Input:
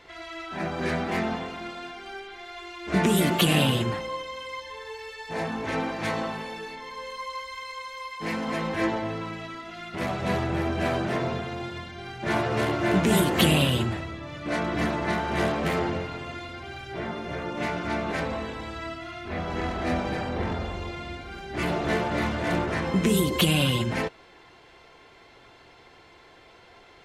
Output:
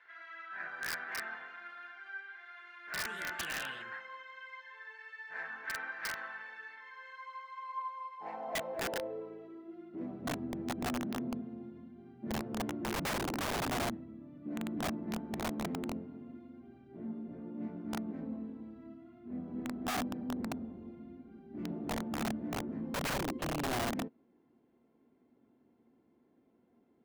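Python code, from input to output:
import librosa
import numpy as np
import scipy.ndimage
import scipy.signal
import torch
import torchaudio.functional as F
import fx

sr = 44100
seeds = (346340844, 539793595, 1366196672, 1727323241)

y = fx.filter_sweep_bandpass(x, sr, from_hz=1600.0, to_hz=240.0, start_s=7.09, end_s=10.33, q=6.7)
y = (np.mod(10.0 ** (31.5 / 20.0) * y + 1.0, 2.0) - 1.0) / 10.0 ** (31.5 / 20.0)
y = y * 10.0 ** (1.5 / 20.0)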